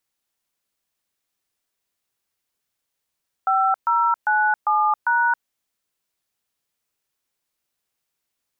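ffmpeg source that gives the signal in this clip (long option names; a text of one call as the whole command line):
ffmpeg -f lavfi -i "aevalsrc='0.119*clip(min(mod(t,0.399),0.272-mod(t,0.399))/0.002,0,1)*(eq(floor(t/0.399),0)*(sin(2*PI*770*mod(t,0.399))+sin(2*PI*1336*mod(t,0.399)))+eq(floor(t/0.399),1)*(sin(2*PI*941*mod(t,0.399))+sin(2*PI*1336*mod(t,0.399)))+eq(floor(t/0.399),2)*(sin(2*PI*852*mod(t,0.399))+sin(2*PI*1477*mod(t,0.399)))+eq(floor(t/0.399),3)*(sin(2*PI*852*mod(t,0.399))+sin(2*PI*1209*mod(t,0.399)))+eq(floor(t/0.399),4)*(sin(2*PI*941*mod(t,0.399))+sin(2*PI*1477*mod(t,0.399))))':duration=1.995:sample_rate=44100" out.wav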